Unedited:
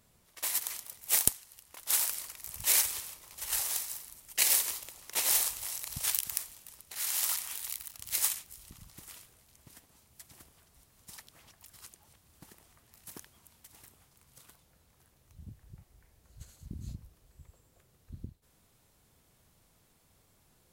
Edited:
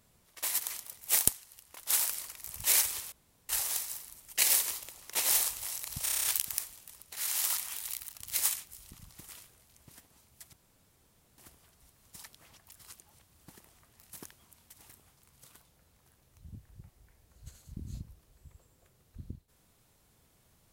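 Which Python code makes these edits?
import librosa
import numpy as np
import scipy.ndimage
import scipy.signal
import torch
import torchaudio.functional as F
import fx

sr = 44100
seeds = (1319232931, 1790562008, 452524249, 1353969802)

y = fx.edit(x, sr, fx.room_tone_fill(start_s=3.12, length_s=0.37),
    fx.stutter(start_s=6.03, slice_s=0.03, count=8),
    fx.insert_room_tone(at_s=10.32, length_s=0.85), tone=tone)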